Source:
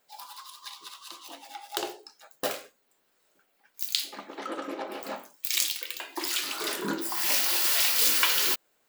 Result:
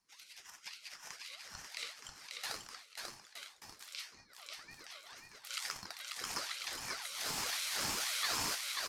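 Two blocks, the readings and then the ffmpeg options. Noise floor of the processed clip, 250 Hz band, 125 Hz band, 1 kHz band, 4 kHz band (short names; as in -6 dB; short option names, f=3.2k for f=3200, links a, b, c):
-62 dBFS, -16.0 dB, -3.5 dB, -9.0 dB, -10.0 dB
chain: -filter_complex "[0:a]lowpass=f=12k:w=0.5412,lowpass=f=12k:w=1.3066,highshelf=f=2.7k:g=11.5,dynaudnorm=f=840:g=3:m=11.5dB,alimiter=limit=-12.5dB:level=0:latency=1:release=51,crystalizer=i=7:c=0,asplit=3[a][b][c];[a]bandpass=f=270:t=q:w=8,volume=0dB[d];[b]bandpass=f=2.29k:t=q:w=8,volume=-6dB[e];[c]bandpass=f=3.01k:t=q:w=8,volume=-9dB[f];[d][e][f]amix=inputs=3:normalize=0,aeval=exprs='0.188*(cos(1*acos(clip(val(0)/0.188,-1,1)))-cos(1*PI/2))+0.0015*(cos(4*acos(clip(val(0)/0.188,-1,1)))-cos(4*PI/2))':c=same,asplit=2[g][h];[h]aecho=0:1:540|918|1183|1368|1497:0.631|0.398|0.251|0.158|0.1[i];[g][i]amix=inputs=2:normalize=0,aeval=exprs='val(0)*sin(2*PI*1500*n/s+1500*0.45/1.9*sin(2*PI*1.9*n/s))':c=same,volume=-6.5dB"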